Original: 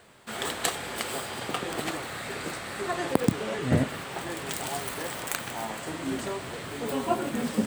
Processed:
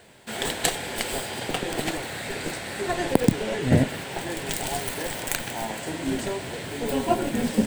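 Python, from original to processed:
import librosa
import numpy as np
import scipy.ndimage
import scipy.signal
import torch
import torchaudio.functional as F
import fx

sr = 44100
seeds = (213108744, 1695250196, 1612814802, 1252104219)

p1 = fx.schmitt(x, sr, flips_db=-23.0)
p2 = x + (p1 * 10.0 ** (-9.5 / 20.0))
p3 = fx.peak_eq(p2, sr, hz=1200.0, db=-12.5, octaves=0.3)
y = p3 * 10.0 ** (4.0 / 20.0)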